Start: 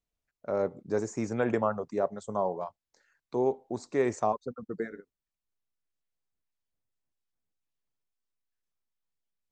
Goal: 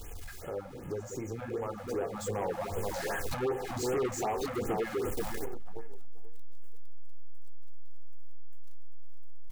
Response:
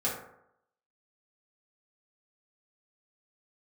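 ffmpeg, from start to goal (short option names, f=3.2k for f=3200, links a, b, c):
-filter_complex "[0:a]aeval=exprs='val(0)+0.5*0.0106*sgn(val(0))':c=same,lowshelf=f=200:g=5.5,asplit=2[a][b];[b]adelay=483,lowpass=f=2k:p=1,volume=-9.5dB,asplit=2[c][d];[d]adelay=483,lowpass=f=2k:p=1,volume=0.41,asplit=2[e][f];[f]adelay=483,lowpass=f=2k:p=1,volume=0.41,asplit=2[g][h];[h]adelay=483,lowpass=f=2k:p=1,volume=0.41[i];[a][c][e][g][i]amix=inputs=5:normalize=0,flanger=delay=9.3:depth=9.1:regen=-41:speed=0.41:shape=sinusoidal,acompressor=threshold=-39dB:ratio=4,asplit=2[j][k];[k]asuperstop=centerf=4100:order=4:qfactor=1.3[l];[1:a]atrim=start_sample=2205[m];[l][m]afir=irnorm=-1:irlink=0,volume=-15.5dB[n];[j][n]amix=inputs=2:normalize=0,dynaudnorm=f=360:g=13:m=11.5dB,aecho=1:1:2.4:0.53,asoftclip=type=tanh:threshold=-29dB,afftfilt=real='re*(1-between(b*sr/1024,350*pow(4800/350,0.5+0.5*sin(2*PI*2.6*pts/sr))/1.41,350*pow(4800/350,0.5+0.5*sin(2*PI*2.6*pts/sr))*1.41))':imag='im*(1-between(b*sr/1024,350*pow(4800/350,0.5+0.5*sin(2*PI*2.6*pts/sr))/1.41,350*pow(4800/350,0.5+0.5*sin(2*PI*2.6*pts/sr))*1.41))':win_size=1024:overlap=0.75,volume=2dB"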